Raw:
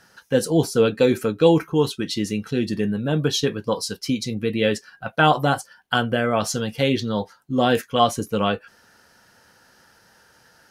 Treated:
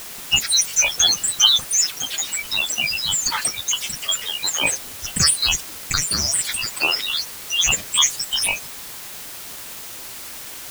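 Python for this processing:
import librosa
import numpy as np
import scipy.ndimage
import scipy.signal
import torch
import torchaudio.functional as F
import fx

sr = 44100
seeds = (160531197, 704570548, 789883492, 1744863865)

y = fx.band_shuffle(x, sr, order='2341')
y = fx.granulator(y, sr, seeds[0], grain_ms=100.0, per_s=20.0, spray_ms=18.0, spread_st=12)
y = fx.quant_dither(y, sr, seeds[1], bits=6, dither='triangular')
y = y * librosa.db_to_amplitude(1.0)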